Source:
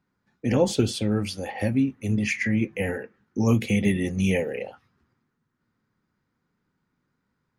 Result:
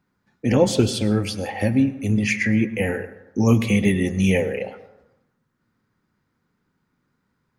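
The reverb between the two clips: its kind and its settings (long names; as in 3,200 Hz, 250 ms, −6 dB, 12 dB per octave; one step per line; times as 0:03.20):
dense smooth reverb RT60 0.89 s, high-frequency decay 0.45×, pre-delay 90 ms, DRR 14 dB
level +4 dB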